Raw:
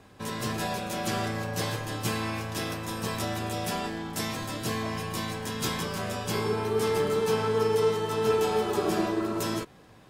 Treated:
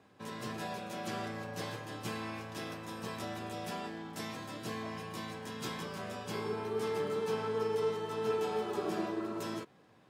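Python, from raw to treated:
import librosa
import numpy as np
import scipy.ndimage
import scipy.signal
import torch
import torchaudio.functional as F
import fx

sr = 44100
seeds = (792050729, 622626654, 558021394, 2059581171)

y = scipy.signal.sosfilt(scipy.signal.butter(2, 130.0, 'highpass', fs=sr, output='sos'), x)
y = fx.high_shelf(y, sr, hz=5800.0, db=-8.0)
y = F.gain(torch.from_numpy(y), -8.0).numpy()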